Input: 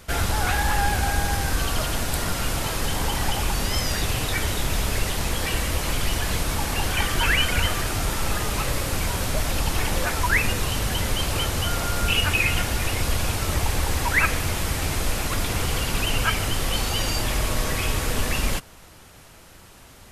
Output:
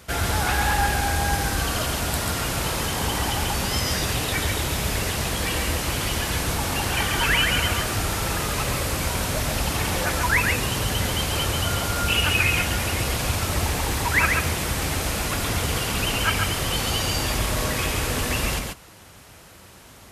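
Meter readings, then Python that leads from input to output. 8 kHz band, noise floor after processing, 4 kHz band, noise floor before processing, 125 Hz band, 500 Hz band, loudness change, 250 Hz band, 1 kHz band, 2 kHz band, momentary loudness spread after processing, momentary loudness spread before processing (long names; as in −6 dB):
+1.5 dB, −47 dBFS, +1.5 dB, −47 dBFS, +0.5 dB, +1.5 dB, +1.0 dB, +1.5 dB, +1.5 dB, +1.5 dB, 5 LU, 5 LU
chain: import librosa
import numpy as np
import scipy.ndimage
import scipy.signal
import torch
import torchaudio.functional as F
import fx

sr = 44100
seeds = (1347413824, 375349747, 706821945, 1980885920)

y = scipy.signal.sosfilt(scipy.signal.butter(2, 54.0, 'highpass', fs=sr, output='sos'), x)
y = y + 10.0 ** (-4.0 / 20.0) * np.pad(y, (int(138 * sr / 1000.0), 0))[:len(y)]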